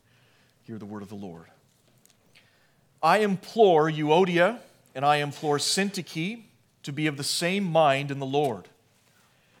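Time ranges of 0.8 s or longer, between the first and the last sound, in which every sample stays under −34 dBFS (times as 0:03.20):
0:01.37–0:03.03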